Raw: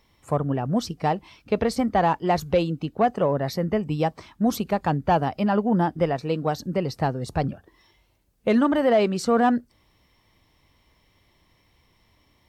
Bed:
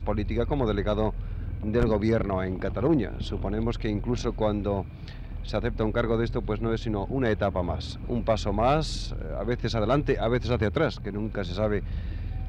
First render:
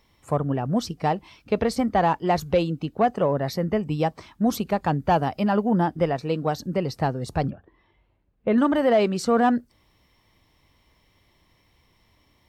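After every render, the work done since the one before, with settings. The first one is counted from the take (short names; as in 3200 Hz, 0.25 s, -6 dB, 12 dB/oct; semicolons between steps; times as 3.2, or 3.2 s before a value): 4.98–5.72 high shelf 6200 Hz +4.5 dB; 7.5–8.58 air absorption 450 m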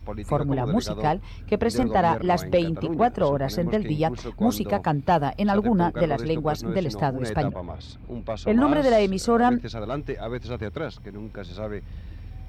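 add bed -6 dB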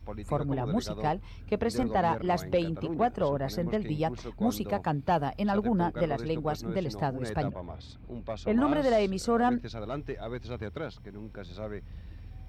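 gain -6 dB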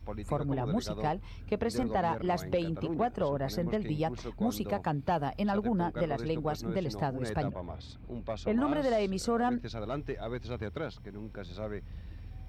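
compressor 2:1, threshold -28 dBFS, peak gain reduction 4.5 dB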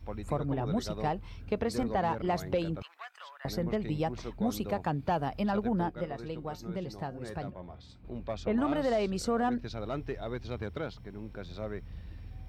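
2.82–3.45 HPF 1300 Hz 24 dB/oct; 5.89–8.05 resonator 180 Hz, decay 0.19 s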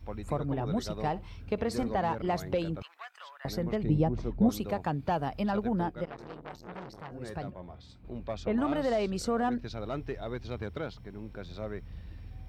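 1.07–2.03 flutter echo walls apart 10.6 m, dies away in 0.2 s; 3.83–4.49 tilt shelf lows +8.5 dB, about 770 Hz; 6.05–7.12 core saturation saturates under 1600 Hz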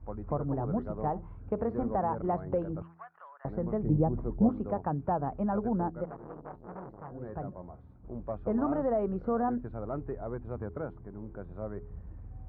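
LPF 1300 Hz 24 dB/oct; de-hum 83.34 Hz, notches 5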